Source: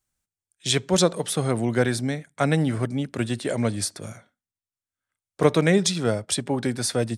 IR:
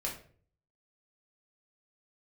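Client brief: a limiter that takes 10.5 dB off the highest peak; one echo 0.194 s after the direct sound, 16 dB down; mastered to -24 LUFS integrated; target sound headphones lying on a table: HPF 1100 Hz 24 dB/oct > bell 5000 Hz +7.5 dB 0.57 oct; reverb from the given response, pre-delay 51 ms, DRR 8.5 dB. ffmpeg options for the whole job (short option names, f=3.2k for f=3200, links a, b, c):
-filter_complex "[0:a]alimiter=limit=-15.5dB:level=0:latency=1,aecho=1:1:194:0.158,asplit=2[a][b];[1:a]atrim=start_sample=2205,adelay=51[c];[b][c]afir=irnorm=-1:irlink=0,volume=-11dB[d];[a][d]amix=inputs=2:normalize=0,highpass=f=1.1k:w=0.5412,highpass=f=1.1k:w=1.3066,equalizer=f=5k:t=o:w=0.57:g=7.5,volume=5.5dB"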